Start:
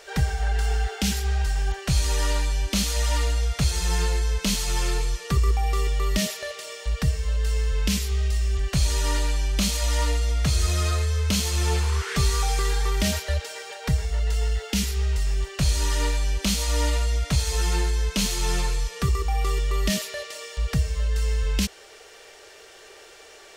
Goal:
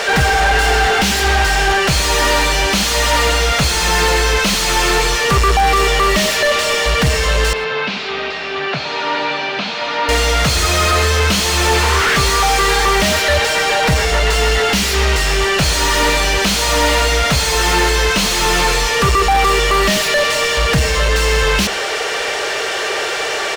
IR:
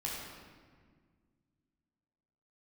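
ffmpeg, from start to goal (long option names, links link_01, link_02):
-filter_complex "[0:a]asplit=2[link_01][link_02];[link_02]highpass=frequency=720:poles=1,volume=34dB,asoftclip=type=tanh:threshold=-11.5dB[link_03];[link_01][link_03]amix=inputs=2:normalize=0,lowpass=frequency=2500:poles=1,volume=-6dB,asettb=1/sr,asplit=3[link_04][link_05][link_06];[link_04]atrim=end=7.534[link_07];[link_05]atrim=start=7.53:end=10.09,asetpts=PTS-STARTPTS,afade=type=in:duration=0.004:curve=qsin,afade=type=out:start_time=2.556:duration=0.004:curve=qsin,highpass=frequency=160:width=0.5412,highpass=frequency=160:width=1.3066,equalizer=frequency=190:width_type=q:width=4:gain=-9,equalizer=frequency=340:width_type=q:width=4:gain=-8,equalizer=frequency=530:width_type=q:width=4:gain=-5,equalizer=frequency=1100:width_type=q:width=4:gain=-4,equalizer=frequency=1900:width_type=q:width=4:gain=-6,equalizer=frequency=3100:width_type=q:width=4:gain=-5,lowpass=frequency=3700:width=0.5412,lowpass=frequency=3700:width=1.3066[link_08];[link_06]atrim=start=10.086[link_09];[link_07][link_08]acrossfade=duration=0.004:curve1=hsin:curve2=qsin[link_10];[link_10][link_09]acrossfade=duration=0.004:curve1=qsin:curve2=hsin,aecho=1:1:112:0.0708,volume=6.5dB"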